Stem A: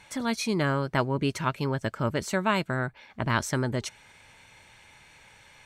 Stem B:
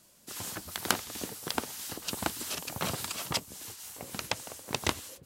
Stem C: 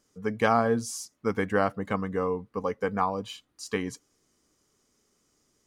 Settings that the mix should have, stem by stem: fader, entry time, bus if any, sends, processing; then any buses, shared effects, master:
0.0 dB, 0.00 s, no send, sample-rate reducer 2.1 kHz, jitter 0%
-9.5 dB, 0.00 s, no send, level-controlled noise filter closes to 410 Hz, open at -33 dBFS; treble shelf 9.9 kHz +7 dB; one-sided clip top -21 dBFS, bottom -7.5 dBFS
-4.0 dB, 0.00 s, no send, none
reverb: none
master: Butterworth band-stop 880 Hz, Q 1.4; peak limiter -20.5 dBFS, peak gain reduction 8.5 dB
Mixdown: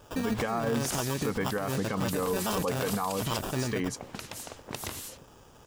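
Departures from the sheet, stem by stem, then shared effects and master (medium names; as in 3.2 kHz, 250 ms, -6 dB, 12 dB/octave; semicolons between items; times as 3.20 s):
stem B -9.5 dB -> +1.5 dB; stem C -4.0 dB -> +5.0 dB; master: missing Butterworth band-stop 880 Hz, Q 1.4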